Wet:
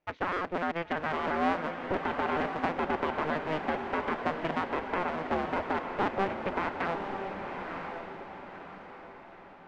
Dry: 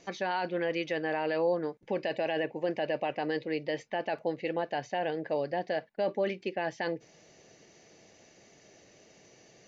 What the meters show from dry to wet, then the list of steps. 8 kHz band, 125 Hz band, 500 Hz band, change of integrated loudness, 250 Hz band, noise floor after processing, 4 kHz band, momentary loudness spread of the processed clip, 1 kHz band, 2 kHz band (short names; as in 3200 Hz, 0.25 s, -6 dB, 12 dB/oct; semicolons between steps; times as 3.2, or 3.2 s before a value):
n/a, +2.0 dB, -2.5 dB, +0.5 dB, +2.0 dB, -50 dBFS, -2.0 dB, 14 LU, +5.5 dB, +3.0 dB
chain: cycle switcher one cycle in 2, inverted; gate with hold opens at -45 dBFS; Chebyshev low-pass 2000 Hz, order 2; transient shaper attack +2 dB, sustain -7 dB; on a send: diffused feedback echo 1.002 s, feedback 43%, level -5 dB